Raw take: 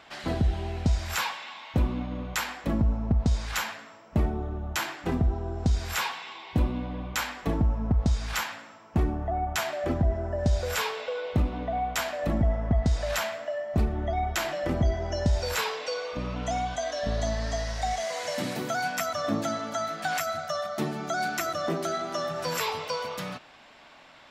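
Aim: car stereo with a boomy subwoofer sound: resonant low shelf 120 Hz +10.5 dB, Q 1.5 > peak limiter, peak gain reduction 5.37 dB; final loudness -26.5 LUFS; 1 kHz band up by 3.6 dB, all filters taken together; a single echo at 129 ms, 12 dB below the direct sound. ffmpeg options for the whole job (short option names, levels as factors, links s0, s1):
-af "lowshelf=f=120:t=q:w=1.5:g=10.5,equalizer=f=1000:t=o:g=5.5,aecho=1:1:129:0.251,volume=0.631,alimiter=limit=0.237:level=0:latency=1"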